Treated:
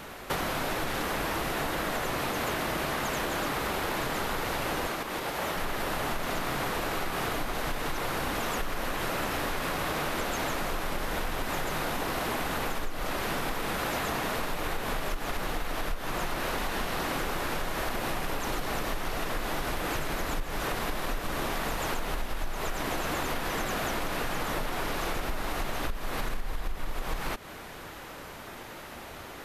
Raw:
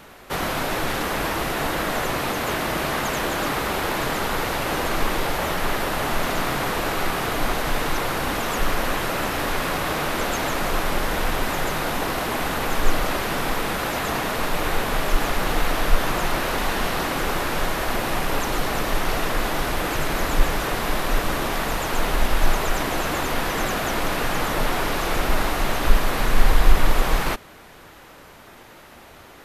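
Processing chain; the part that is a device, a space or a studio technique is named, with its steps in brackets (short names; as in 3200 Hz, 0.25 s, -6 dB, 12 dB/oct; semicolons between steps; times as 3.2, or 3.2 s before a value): serial compression, leveller first (compressor 2:1, threshold -25 dBFS, peak gain reduction 11 dB; compressor, threshold -30 dBFS, peak gain reduction 14 dB); 4.87–5.56 HPF 140 Hz 6 dB/oct; gain +2.5 dB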